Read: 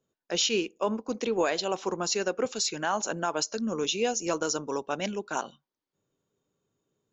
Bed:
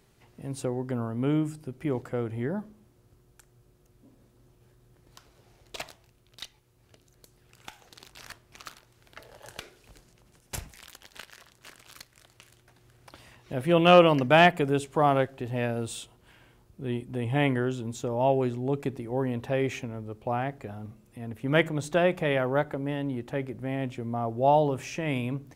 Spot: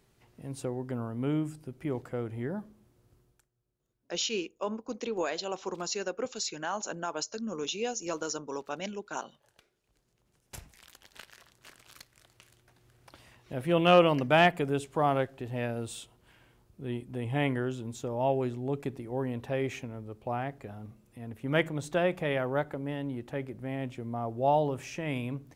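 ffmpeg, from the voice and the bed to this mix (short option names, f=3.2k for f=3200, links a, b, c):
-filter_complex "[0:a]adelay=3800,volume=-5.5dB[a];[1:a]volume=13.5dB,afade=t=out:st=3.18:d=0.31:silence=0.133352,afade=t=in:st=9.89:d=1.37:silence=0.133352[b];[a][b]amix=inputs=2:normalize=0"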